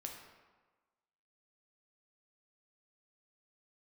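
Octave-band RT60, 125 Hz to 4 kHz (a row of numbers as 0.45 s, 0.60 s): 1.1 s, 1.2 s, 1.3 s, 1.4 s, 1.1 s, 0.85 s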